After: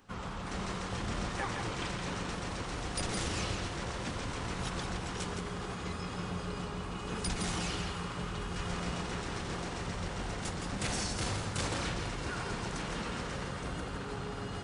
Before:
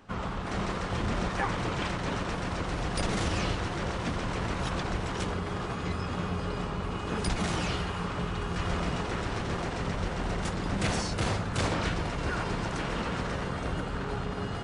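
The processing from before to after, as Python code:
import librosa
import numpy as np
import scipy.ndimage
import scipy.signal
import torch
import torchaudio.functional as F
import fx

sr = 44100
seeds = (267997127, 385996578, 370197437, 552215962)

y = fx.high_shelf(x, sr, hz=4700.0, db=10.0)
y = fx.notch(y, sr, hz=640.0, q=20.0)
y = y + 10.0 ** (-6.0 / 20.0) * np.pad(y, (int(166 * sr / 1000.0), 0))[:len(y)]
y = y * librosa.db_to_amplitude(-7.0)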